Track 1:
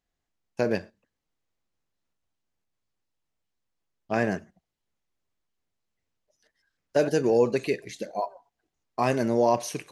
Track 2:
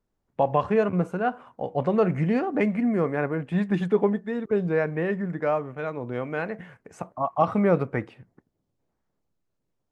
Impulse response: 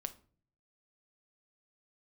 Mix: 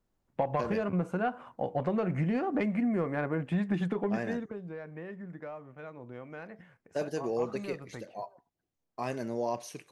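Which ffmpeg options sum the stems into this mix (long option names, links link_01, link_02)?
-filter_complex "[0:a]volume=-10.5dB[link_01];[1:a]aeval=exprs='0.501*sin(PI/2*1.58*val(0)/0.501)':channel_layout=same,acompressor=threshold=-18dB:ratio=6,bandreject=frequency=430:width=13,volume=-8dB,afade=type=out:start_time=4.16:duration=0.46:silence=0.251189[link_02];[link_01][link_02]amix=inputs=2:normalize=0"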